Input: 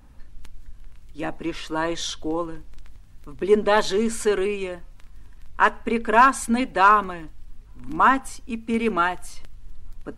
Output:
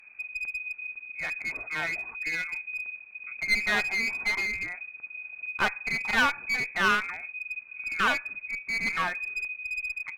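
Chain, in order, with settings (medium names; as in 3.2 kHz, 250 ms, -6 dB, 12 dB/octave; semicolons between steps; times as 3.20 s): crackle 170 per s -44 dBFS; frequency inversion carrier 2.5 kHz; one-sided clip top -24.5 dBFS; trim -5 dB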